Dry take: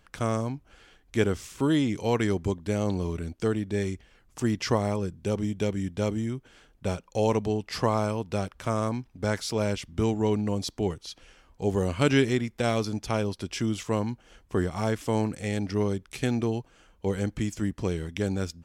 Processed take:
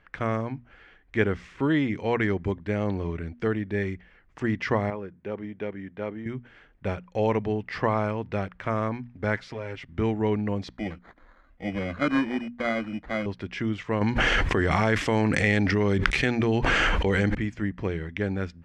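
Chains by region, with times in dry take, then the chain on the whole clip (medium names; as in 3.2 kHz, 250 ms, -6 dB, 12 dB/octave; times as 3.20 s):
4.90–6.26 s: high-pass 420 Hz 6 dB/octave + tape spacing loss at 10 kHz 25 dB
9.36–9.89 s: companding laws mixed up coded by A + comb 7.5 ms, depth 67% + compression 3:1, threshold -33 dBFS
10.77–13.26 s: tone controls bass +2 dB, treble -10 dB + static phaser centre 620 Hz, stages 8 + sample-rate reducer 2.7 kHz
14.01–17.35 s: treble shelf 3.5 kHz +11.5 dB + level flattener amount 100%
whole clip: low-pass 2.6 kHz 12 dB/octave; peaking EQ 1.9 kHz +9 dB 0.68 oct; hum notches 60/120/180/240 Hz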